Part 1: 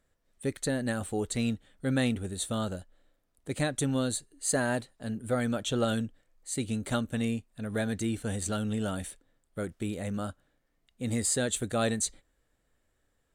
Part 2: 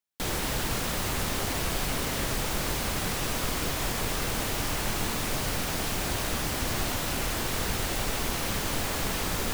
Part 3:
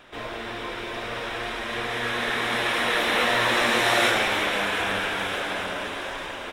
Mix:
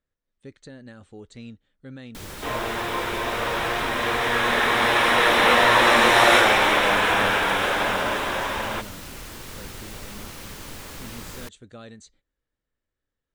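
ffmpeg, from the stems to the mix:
ffmpeg -i stem1.wav -i stem2.wav -i stem3.wav -filter_complex "[0:a]alimiter=limit=-21dB:level=0:latency=1:release=271,lowpass=frequency=6200:width=0.5412,lowpass=frequency=6200:width=1.3066,volume=-10.5dB[link_01];[1:a]adelay=1950,volume=-8.5dB[link_02];[2:a]equalizer=frequency=820:width_type=o:width=1.4:gain=7.5,adelay=2300,volume=3dB[link_03];[link_01][link_02][link_03]amix=inputs=3:normalize=0,equalizer=frequency=710:width=3.8:gain=-5" out.wav

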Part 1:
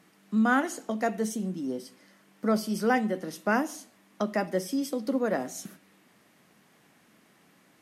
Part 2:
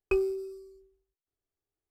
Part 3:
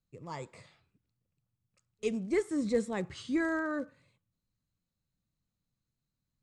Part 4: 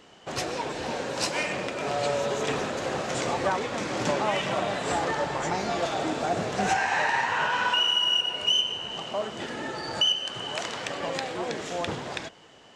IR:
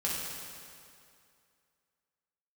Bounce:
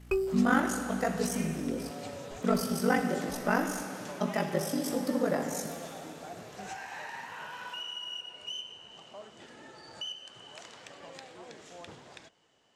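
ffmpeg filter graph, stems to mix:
-filter_complex "[0:a]aeval=exprs='val(0)*sin(2*PI*24*n/s)':channel_layout=same,volume=-3dB,asplit=2[link_01][link_02];[link_02]volume=-7.5dB[link_03];[1:a]aeval=exprs='val(0)+0.00447*(sin(2*PI*60*n/s)+sin(2*PI*2*60*n/s)/2+sin(2*PI*3*60*n/s)/3+sin(2*PI*4*60*n/s)/4+sin(2*PI*5*60*n/s)/5)':channel_layout=same,volume=-2.5dB[link_04];[2:a]aeval=exprs='val(0)*sin(2*PI*320*n/s)':channel_layout=same,acompressor=threshold=-36dB:ratio=6,volume=-9dB[link_05];[3:a]volume=-17dB[link_06];[4:a]atrim=start_sample=2205[link_07];[link_03][link_07]afir=irnorm=-1:irlink=0[link_08];[link_01][link_04][link_05][link_06][link_08]amix=inputs=5:normalize=0,highshelf=frequency=6400:gain=7"

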